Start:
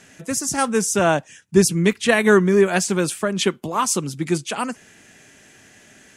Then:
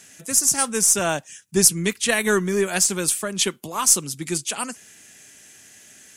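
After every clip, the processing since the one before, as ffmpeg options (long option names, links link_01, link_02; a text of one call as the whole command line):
ffmpeg -i in.wav -af "crystalizer=i=4:c=0,aeval=exprs='1.88*(cos(1*acos(clip(val(0)/1.88,-1,1)))-cos(1*PI/2))+0.0299*(cos(6*acos(clip(val(0)/1.88,-1,1)))-cos(6*PI/2))+0.0119*(cos(7*acos(clip(val(0)/1.88,-1,1)))-cos(7*PI/2))':channel_layout=same,volume=-6.5dB" out.wav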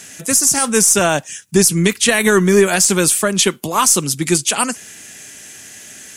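ffmpeg -i in.wav -af "alimiter=level_in=12dB:limit=-1dB:release=50:level=0:latency=1,volume=-1dB" out.wav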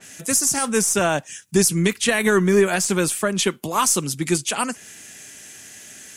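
ffmpeg -i in.wav -af "adynamicequalizer=threshold=0.0316:dfrequency=3300:dqfactor=0.7:tfrequency=3300:tqfactor=0.7:attack=5:release=100:ratio=0.375:range=3:mode=cutabove:tftype=highshelf,volume=-4.5dB" out.wav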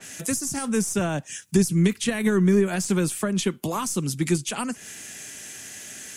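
ffmpeg -i in.wav -filter_complex "[0:a]acrossover=split=290[link_01][link_02];[link_02]acompressor=threshold=-29dB:ratio=6[link_03];[link_01][link_03]amix=inputs=2:normalize=0,volume=2dB" out.wav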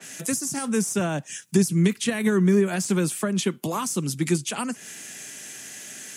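ffmpeg -i in.wav -af "highpass=frequency=120:width=0.5412,highpass=frequency=120:width=1.3066" out.wav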